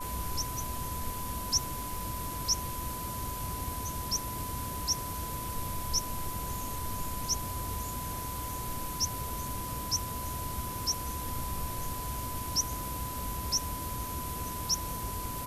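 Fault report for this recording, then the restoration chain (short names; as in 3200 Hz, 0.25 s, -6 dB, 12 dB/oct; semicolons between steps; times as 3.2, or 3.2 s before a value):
tone 1000 Hz -39 dBFS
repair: notch 1000 Hz, Q 30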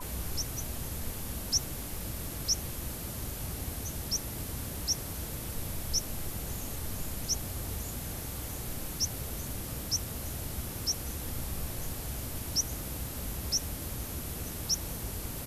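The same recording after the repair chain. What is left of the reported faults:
none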